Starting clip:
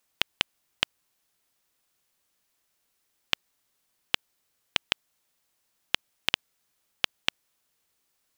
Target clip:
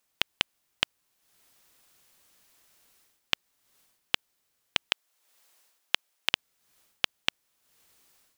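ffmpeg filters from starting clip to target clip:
ffmpeg -i in.wav -filter_complex "[0:a]asettb=1/sr,asplit=3[link_01][link_02][link_03];[link_01]atrim=end=4.904[link_04];[link_02]atrim=start=4.9:end=6.31,asetpts=PTS-STARTPTS,afade=type=in:duration=0.004:curve=qsin,afade=type=out:start_time=1.406:duration=0.004:curve=qsin,highpass=390[link_05];[link_03]atrim=start=6.306[link_06];[link_04][link_05]acrossfade=duration=0.004:curve1=hsin:curve2=qsin[link_07];[link_07][link_06]acrossfade=duration=0.004:curve1=qsin:curve2=hsin,dynaudnorm=framelen=200:gausssize=3:maxgain=12dB,volume=-1dB" out.wav

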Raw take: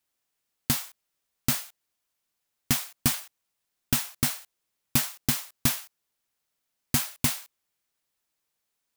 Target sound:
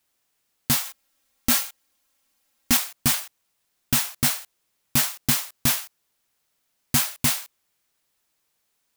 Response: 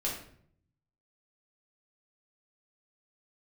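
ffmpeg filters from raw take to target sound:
-filter_complex "[0:a]asettb=1/sr,asplit=3[link_01][link_02][link_03];[link_01]atrim=end=0.854[link_04];[link_02]atrim=start=0.85:end=2.77,asetpts=PTS-STARTPTS,afade=type=in:duration=0.004:curve=qsin,afade=type=out:start_time=1.916:duration=0.004:curve=qsin,aecho=1:1:3.7:0.98,atrim=end_sample=84672[link_05];[link_03]atrim=start=2.766[link_06];[link_04][link_05]acrossfade=duration=0.004:curve1=hsin:curve2=qsin[link_07];[link_07][link_06]acrossfade=duration=0.004:curve1=qsin:curve2=hsin,alimiter=limit=-15dB:level=0:latency=1:release=18,volume=7.5dB"

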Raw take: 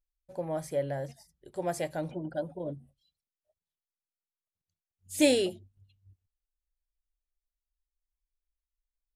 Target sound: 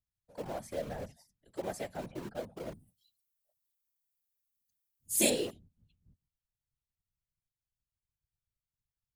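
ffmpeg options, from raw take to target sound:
ffmpeg -i in.wav -filter_complex "[0:a]asettb=1/sr,asplit=3[link_01][link_02][link_03];[link_01]atrim=end=2.574[link_04];[link_02]atrim=start=2.57:end=5.3,asetpts=PTS-STARTPTS,afade=type=in:duration=0.004:curve=qsin,afade=type=out:start_time=2.726:duration=0.004:curve=qsin,aemphasis=mode=production:type=75fm[link_05];[link_03]atrim=start=5.296[link_06];[link_04][link_05]acrossfade=duration=0.004:curve1=hsin:curve2=qsin[link_07];[link_07][link_06]acrossfade=duration=0.004:curve1=qsin:curve2=hsin,acrossover=split=250|460|4800[link_08][link_09][link_10][link_11];[link_09]acrusher=bits=6:mix=0:aa=0.000001[link_12];[link_08][link_12][link_10][link_11]amix=inputs=4:normalize=0,afftfilt=real='hypot(re,im)*cos(2*PI*random(0))':imag='hypot(re,im)*sin(2*PI*random(1))':win_size=512:overlap=0.75" out.wav

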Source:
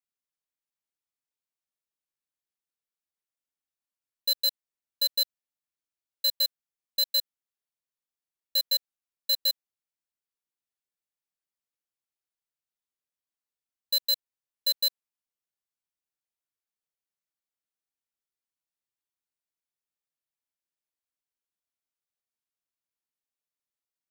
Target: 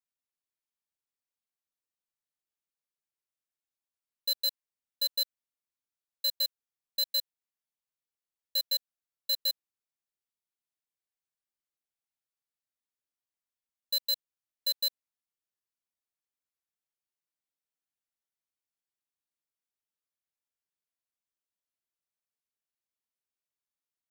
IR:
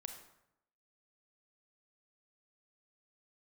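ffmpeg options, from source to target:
-af "volume=-4dB"

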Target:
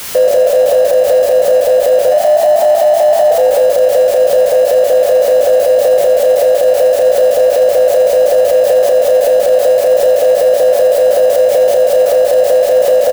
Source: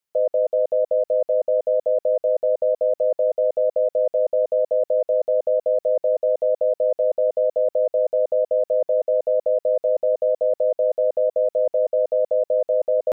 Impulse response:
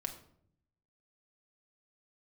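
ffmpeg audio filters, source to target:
-filter_complex "[0:a]aeval=exprs='val(0)+0.5*0.0266*sgn(val(0))':channel_layout=same,bandreject=frequency=630:width=12,asplit=3[link_01][link_02][link_03];[link_01]afade=type=out:start_time=2.1:duration=0.02[link_04];[link_02]afreqshift=94,afade=type=in:start_time=2.1:duration=0.02,afade=type=out:start_time=3.3:duration=0.02[link_05];[link_03]afade=type=in:start_time=3.3:duration=0.02[link_06];[link_04][link_05][link_06]amix=inputs=3:normalize=0,asplit=2[link_07][link_08];[link_08]adelay=33,volume=-4dB[link_09];[link_07][link_09]amix=inputs=2:normalize=0,asplit=6[link_10][link_11][link_12][link_13][link_14][link_15];[link_11]adelay=86,afreqshift=60,volume=-8dB[link_16];[link_12]adelay=172,afreqshift=120,volume=-14.7dB[link_17];[link_13]adelay=258,afreqshift=180,volume=-21.5dB[link_18];[link_14]adelay=344,afreqshift=240,volume=-28.2dB[link_19];[link_15]adelay=430,afreqshift=300,volume=-35dB[link_20];[link_10][link_16][link_17][link_18][link_19][link_20]amix=inputs=6:normalize=0,alimiter=level_in=15dB:limit=-1dB:release=50:level=0:latency=1,volume=-1.5dB"

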